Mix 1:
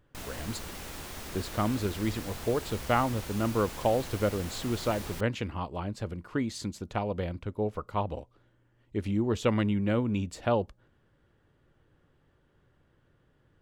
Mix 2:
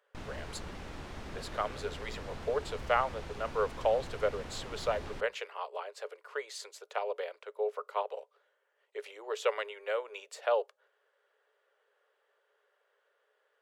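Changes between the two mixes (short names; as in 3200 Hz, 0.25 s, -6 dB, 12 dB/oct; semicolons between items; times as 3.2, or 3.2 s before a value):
speech: add rippled Chebyshev high-pass 410 Hz, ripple 3 dB; background: add tape spacing loss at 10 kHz 20 dB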